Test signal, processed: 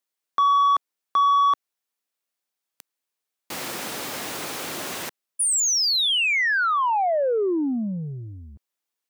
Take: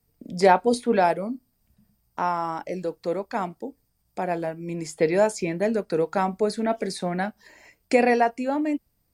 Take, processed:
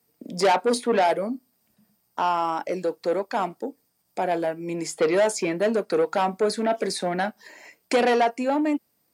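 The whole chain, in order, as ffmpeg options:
ffmpeg -i in.wav -af "acontrast=22,asoftclip=type=tanh:threshold=-14.5dB,highpass=250" out.wav

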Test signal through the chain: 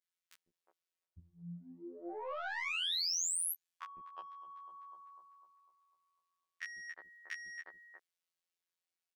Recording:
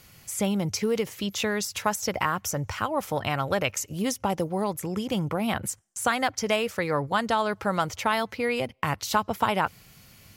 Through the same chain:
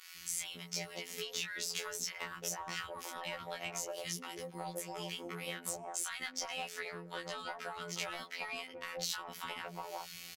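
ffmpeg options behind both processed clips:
ffmpeg -i in.wav -filter_complex "[0:a]equalizer=frequency=380:width=1.7:gain=4.5,acompressor=threshold=-36dB:ratio=4,acrossover=split=320|1100[link_01][link_02][link_03];[link_01]adelay=150[link_04];[link_02]adelay=360[link_05];[link_04][link_05][link_03]amix=inputs=3:normalize=0,asplit=2[link_06][link_07];[link_07]highpass=frequency=720:poles=1,volume=13dB,asoftclip=type=tanh:threshold=-22dB[link_08];[link_06][link_08]amix=inputs=2:normalize=0,lowpass=frequency=5100:poles=1,volume=-6dB,acrossover=split=200|400[link_09][link_10][link_11];[link_09]acompressor=threshold=-49dB:ratio=4[link_12];[link_10]acompressor=threshold=-56dB:ratio=4[link_13];[link_11]acompressor=threshold=-37dB:ratio=4[link_14];[link_12][link_13][link_14]amix=inputs=3:normalize=0,afftfilt=real='hypot(re,im)*cos(PI*b)':imag='0':win_size=2048:overlap=0.75,asplit=2[link_15][link_16];[link_16]adelay=17,volume=-3dB[link_17];[link_15][link_17]amix=inputs=2:normalize=0,adynamicequalizer=threshold=0.002:dfrequency=2100:dqfactor=0.7:tfrequency=2100:tqfactor=0.7:attack=5:release=100:ratio=0.375:range=3:mode=boostabove:tftype=highshelf,volume=-2dB" out.wav

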